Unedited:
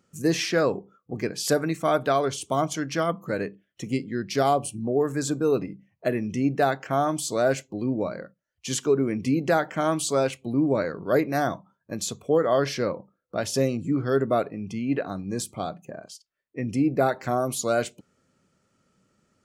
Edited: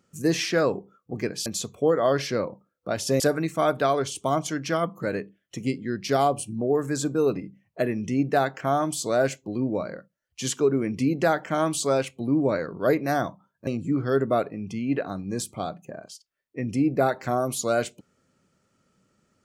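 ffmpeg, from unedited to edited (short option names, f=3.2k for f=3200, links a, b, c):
-filter_complex "[0:a]asplit=4[a][b][c][d];[a]atrim=end=1.462[e];[b]atrim=start=11.928:end=13.672[f];[c]atrim=start=1.458:end=11.932[g];[d]atrim=start=13.668[h];[e][f]acrossfade=d=0.004:c1=hsin:c2=hsin[i];[i][g]acrossfade=d=0.004:c1=hsin:c2=hsin[j];[j][h]acrossfade=d=0.004:c1=hsin:c2=hsin"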